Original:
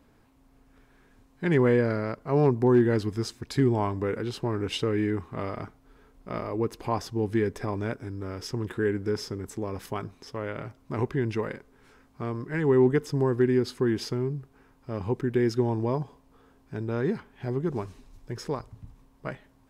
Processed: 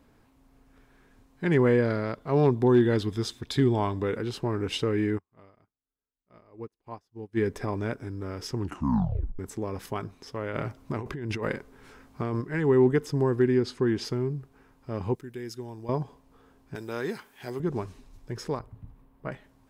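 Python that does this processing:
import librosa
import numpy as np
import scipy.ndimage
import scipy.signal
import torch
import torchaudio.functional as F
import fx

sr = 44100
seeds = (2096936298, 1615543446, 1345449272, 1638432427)

y = fx.peak_eq(x, sr, hz=3500.0, db=14.0, octaves=0.24, at=(1.82, 4.17))
y = fx.upward_expand(y, sr, threshold_db=-44.0, expansion=2.5, at=(5.17, 7.36), fade=0.02)
y = fx.over_compress(y, sr, threshold_db=-33.0, ratio=-1.0, at=(10.53, 12.4), fade=0.02)
y = fx.lowpass(y, sr, hz=8100.0, slope=12, at=(13.48, 14.05))
y = fx.pre_emphasis(y, sr, coefficient=0.8, at=(15.15, 15.89))
y = fx.riaa(y, sr, side='recording', at=(16.75, 17.6))
y = fx.peak_eq(y, sr, hz=6100.0, db=-13.0, octaves=1.7, at=(18.59, 19.32))
y = fx.edit(y, sr, fx.tape_stop(start_s=8.57, length_s=0.82), tone=tone)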